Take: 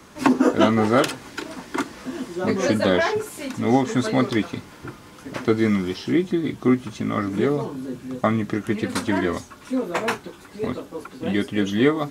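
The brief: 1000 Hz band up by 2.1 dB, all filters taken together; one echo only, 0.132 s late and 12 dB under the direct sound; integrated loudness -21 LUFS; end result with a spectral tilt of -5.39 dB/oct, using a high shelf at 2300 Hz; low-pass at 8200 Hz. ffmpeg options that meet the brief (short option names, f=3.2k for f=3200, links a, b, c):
-af "lowpass=8.2k,equalizer=f=1k:t=o:g=3.5,highshelf=f=2.3k:g=-3.5,aecho=1:1:132:0.251,volume=1.5dB"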